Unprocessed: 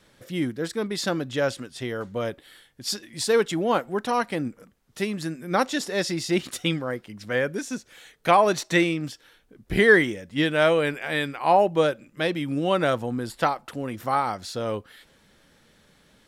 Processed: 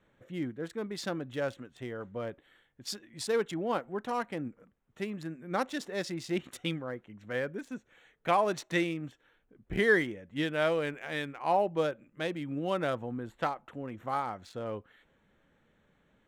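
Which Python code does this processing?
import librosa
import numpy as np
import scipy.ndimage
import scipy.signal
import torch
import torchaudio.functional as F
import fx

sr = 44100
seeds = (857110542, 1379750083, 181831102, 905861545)

y = fx.wiener(x, sr, points=9)
y = y * librosa.db_to_amplitude(-8.5)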